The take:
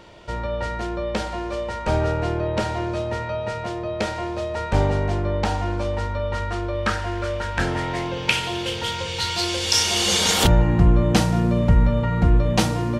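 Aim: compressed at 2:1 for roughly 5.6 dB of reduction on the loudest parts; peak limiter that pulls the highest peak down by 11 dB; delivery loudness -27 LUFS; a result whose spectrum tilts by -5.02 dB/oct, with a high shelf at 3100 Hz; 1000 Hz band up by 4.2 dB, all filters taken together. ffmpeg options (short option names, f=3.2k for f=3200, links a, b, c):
-af "equalizer=f=1k:t=o:g=5.5,highshelf=f=3.1k:g=-3.5,acompressor=threshold=-21dB:ratio=2,volume=-1dB,alimiter=limit=-17.5dB:level=0:latency=1"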